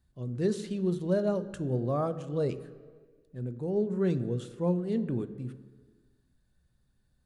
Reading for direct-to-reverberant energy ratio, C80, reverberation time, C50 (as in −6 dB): 11.0 dB, 16.0 dB, 1.8 s, 14.5 dB